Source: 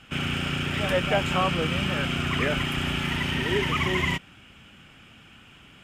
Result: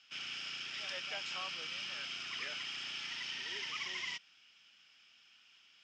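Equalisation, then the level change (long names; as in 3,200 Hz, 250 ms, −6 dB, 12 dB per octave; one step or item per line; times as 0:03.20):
resonant band-pass 5,300 Hz, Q 4.8
high-frequency loss of the air 120 metres
+8.0 dB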